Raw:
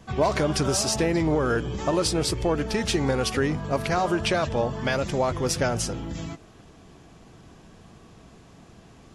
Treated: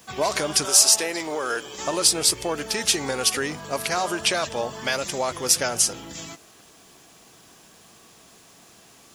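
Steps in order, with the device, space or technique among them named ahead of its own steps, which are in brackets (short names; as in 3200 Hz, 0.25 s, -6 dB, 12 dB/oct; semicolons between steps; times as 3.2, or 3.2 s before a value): turntable without a phono preamp (RIAA curve recording; white noise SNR 36 dB); 0.65–1.78 tone controls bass -14 dB, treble +1 dB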